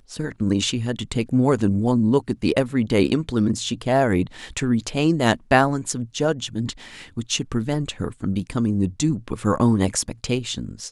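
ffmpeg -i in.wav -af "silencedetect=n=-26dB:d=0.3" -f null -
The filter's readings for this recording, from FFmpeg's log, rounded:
silence_start: 6.71
silence_end: 7.17 | silence_duration: 0.46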